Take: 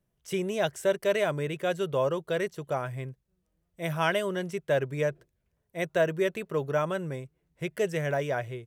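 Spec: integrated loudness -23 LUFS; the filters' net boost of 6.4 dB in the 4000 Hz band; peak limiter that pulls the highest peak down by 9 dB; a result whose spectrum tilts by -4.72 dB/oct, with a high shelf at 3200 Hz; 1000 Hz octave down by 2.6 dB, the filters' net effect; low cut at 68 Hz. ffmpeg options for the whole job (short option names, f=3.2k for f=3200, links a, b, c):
-af "highpass=68,equalizer=f=1k:t=o:g=-4.5,highshelf=f=3.2k:g=3,equalizer=f=4k:t=o:g=7,volume=9dB,alimiter=limit=-11dB:level=0:latency=1"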